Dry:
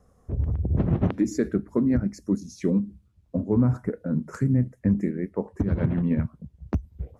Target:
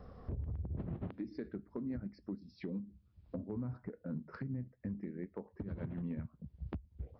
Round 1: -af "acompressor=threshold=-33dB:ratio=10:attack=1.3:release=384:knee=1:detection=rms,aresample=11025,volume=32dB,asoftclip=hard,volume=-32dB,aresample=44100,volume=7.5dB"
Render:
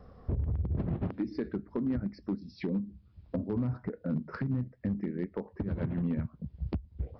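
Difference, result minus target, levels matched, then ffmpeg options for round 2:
compressor: peak gain reduction -9 dB
-af "acompressor=threshold=-43dB:ratio=10:attack=1.3:release=384:knee=1:detection=rms,aresample=11025,volume=32dB,asoftclip=hard,volume=-32dB,aresample=44100,volume=7.5dB"

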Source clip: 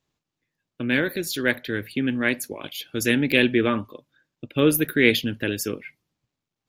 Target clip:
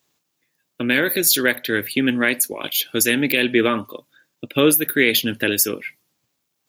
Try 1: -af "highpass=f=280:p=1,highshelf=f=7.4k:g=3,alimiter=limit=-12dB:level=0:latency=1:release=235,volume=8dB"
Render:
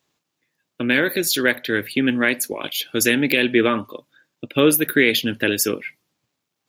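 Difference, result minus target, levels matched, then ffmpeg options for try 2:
8000 Hz band -3.0 dB
-af "highpass=f=280:p=1,highshelf=f=7.4k:g=13.5,alimiter=limit=-12dB:level=0:latency=1:release=235,volume=8dB"

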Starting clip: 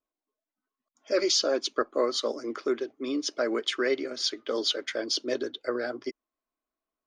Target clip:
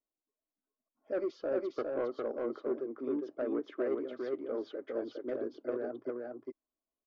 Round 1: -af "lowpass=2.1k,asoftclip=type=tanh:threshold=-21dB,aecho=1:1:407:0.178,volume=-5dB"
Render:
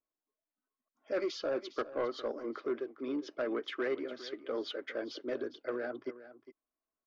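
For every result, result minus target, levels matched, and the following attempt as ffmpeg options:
echo-to-direct -12 dB; 2000 Hz band +8.0 dB
-af "lowpass=2.1k,asoftclip=type=tanh:threshold=-21dB,aecho=1:1:407:0.708,volume=-5dB"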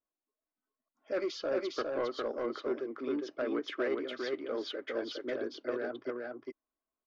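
2000 Hz band +8.0 dB
-af "lowpass=820,asoftclip=type=tanh:threshold=-21dB,aecho=1:1:407:0.708,volume=-5dB"

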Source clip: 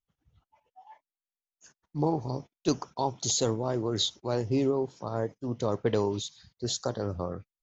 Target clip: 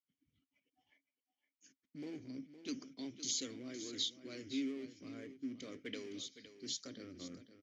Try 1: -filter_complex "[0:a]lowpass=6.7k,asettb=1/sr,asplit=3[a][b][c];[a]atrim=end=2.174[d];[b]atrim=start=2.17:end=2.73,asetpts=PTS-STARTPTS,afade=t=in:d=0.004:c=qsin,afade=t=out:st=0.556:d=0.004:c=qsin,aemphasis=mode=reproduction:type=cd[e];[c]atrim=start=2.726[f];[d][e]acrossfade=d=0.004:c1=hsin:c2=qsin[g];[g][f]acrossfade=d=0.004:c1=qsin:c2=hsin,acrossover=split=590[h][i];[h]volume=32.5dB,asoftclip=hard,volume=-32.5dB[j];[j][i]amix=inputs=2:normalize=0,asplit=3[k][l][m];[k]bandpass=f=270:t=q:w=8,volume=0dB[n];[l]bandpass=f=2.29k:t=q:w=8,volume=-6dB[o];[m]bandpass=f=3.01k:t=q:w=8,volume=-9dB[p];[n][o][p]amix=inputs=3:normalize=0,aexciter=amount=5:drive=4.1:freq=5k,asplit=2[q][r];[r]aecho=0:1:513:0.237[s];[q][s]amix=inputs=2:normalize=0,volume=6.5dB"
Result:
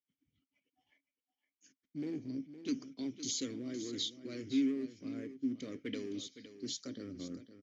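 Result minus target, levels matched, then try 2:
overloaded stage: distortion -4 dB
-filter_complex "[0:a]lowpass=6.7k,asettb=1/sr,asplit=3[a][b][c];[a]atrim=end=2.174[d];[b]atrim=start=2.17:end=2.73,asetpts=PTS-STARTPTS,afade=t=in:d=0.004:c=qsin,afade=t=out:st=0.556:d=0.004:c=qsin,aemphasis=mode=reproduction:type=cd[e];[c]atrim=start=2.726[f];[d][e]acrossfade=d=0.004:c1=hsin:c2=qsin[g];[g][f]acrossfade=d=0.004:c1=qsin:c2=hsin,acrossover=split=590[h][i];[h]volume=42dB,asoftclip=hard,volume=-42dB[j];[j][i]amix=inputs=2:normalize=0,asplit=3[k][l][m];[k]bandpass=f=270:t=q:w=8,volume=0dB[n];[l]bandpass=f=2.29k:t=q:w=8,volume=-6dB[o];[m]bandpass=f=3.01k:t=q:w=8,volume=-9dB[p];[n][o][p]amix=inputs=3:normalize=0,aexciter=amount=5:drive=4.1:freq=5k,asplit=2[q][r];[r]aecho=0:1:513:0.237[s];[q][s]amix=inputs=2:normalize=0,volume=6.5dB"

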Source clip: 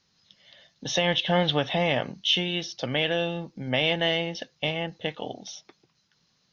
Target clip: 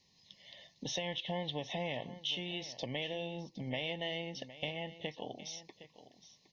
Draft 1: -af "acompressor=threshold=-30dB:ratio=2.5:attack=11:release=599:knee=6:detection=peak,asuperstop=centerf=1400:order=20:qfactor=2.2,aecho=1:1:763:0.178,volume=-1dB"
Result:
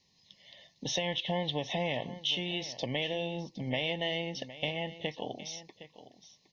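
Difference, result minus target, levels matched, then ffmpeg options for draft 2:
compressor: peak gain reduction -5.5 dB
-af "acompressor=threshold=-39dB:ratio=2.5:attack=11:release=599:knee=6:detection=peak,asuperstop=centerf=1400:order=20:qfactor=2.2,aecho=1:1:763:0.178,volume=-1dB"

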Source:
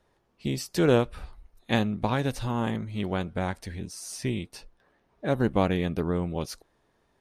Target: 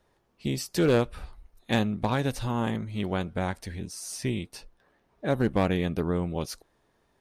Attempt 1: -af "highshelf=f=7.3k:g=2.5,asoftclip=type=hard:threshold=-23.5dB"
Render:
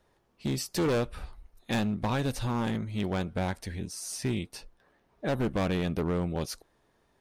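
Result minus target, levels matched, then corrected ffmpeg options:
hard clip: distortion +11 dB
-af "highshelf=f=7.3k:g=2.5,asoftclip=type=hard:threshold=-15.5dB"

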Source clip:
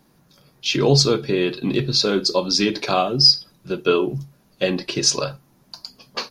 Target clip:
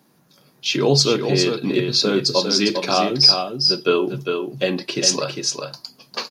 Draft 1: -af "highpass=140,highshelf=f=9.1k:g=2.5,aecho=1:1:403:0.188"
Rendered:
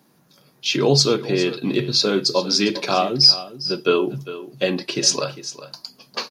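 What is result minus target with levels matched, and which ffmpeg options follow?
echo-to-direct -9 dB
-af "highpass=140,highshelf=f=9.1k:g=2.5,aecho=1:1:403:0.531"

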